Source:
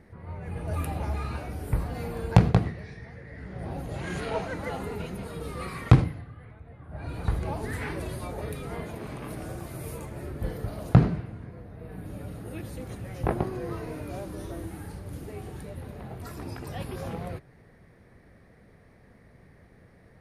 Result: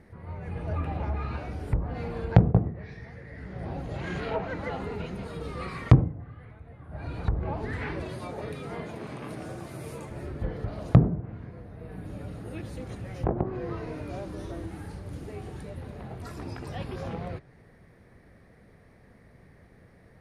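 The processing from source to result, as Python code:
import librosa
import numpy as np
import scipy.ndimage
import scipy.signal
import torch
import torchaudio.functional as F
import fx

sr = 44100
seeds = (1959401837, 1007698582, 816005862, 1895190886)

y = fx.highpass(x, sr, hz=110.0, slope=12, at=(8.03, 10.1))
y = fx.env_lowpass_down(y, sr, base_hz=710.0, full_db=-21.5)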